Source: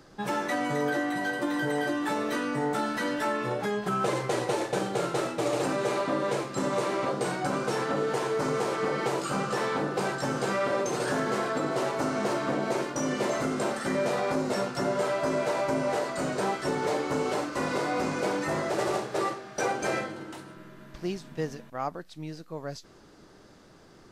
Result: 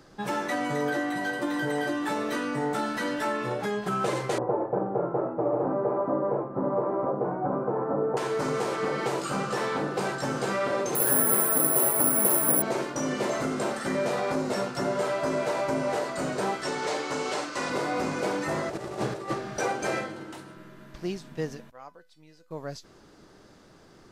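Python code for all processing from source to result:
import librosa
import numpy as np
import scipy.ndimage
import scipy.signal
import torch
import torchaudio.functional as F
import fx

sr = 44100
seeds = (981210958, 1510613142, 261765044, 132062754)

y = fx.chain(x, sr, fx.lowpass(hz=1100.0, slope=24),
    fx.peak_eq(hz=680.0, db=2.5, octaves=2.0), at=(4.38, 8.17))
y = fx.chain(y, sr, fx.high_shelf(hz=4400.0, db=-11.0),
    fx.notch(hz=710.0, q=18.0),
    fx.resample_bad(factor=4, down='filtered', up='zero_stuff'), at=(10.95, 12.62))
y = fx.chain(y, sr, fx.lowpass(hz=7000.0, slope=12),
    fx.tilt_eq(slope=2.5), at=(16.63, 17.7))
y = fx.chain(y, sr, fx.over_compress(threshold_db=-33.0, ratio=-0.5),
    fx.low_shelf(hz=230.0, db=10.0), at=(18.69, 19.58))
y = fx.chain(y, sr, fx.low_shelf(hz=410.0, db=-7.0),
    fx.comb_fb(f0_hz=500.0, decay_s=0.2, harmonics='all', damping=0.0, mix_pct=80), at=(21.71, 22.51))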